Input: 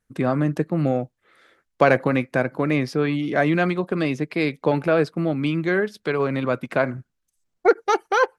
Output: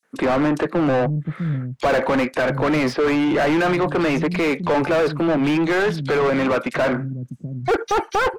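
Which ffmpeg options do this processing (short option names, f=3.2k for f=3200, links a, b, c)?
-filter_complex "[0:a]acrossover=split=160|4200[a][b][c];[b]adelay=30[d];[a]adelay=680[e];[e][d][c]amix=inputs=3:normalize=0,asplit=2[f][g];[g]highpass=f=720:p=1,volume=35dB,asoftclip=type=tanh:threshold=-3dB[h];[f][h]amix=inputs=2:normalize=0,lowpass=f=1.4k:p=1,volume=-6dB,volume=-7dB"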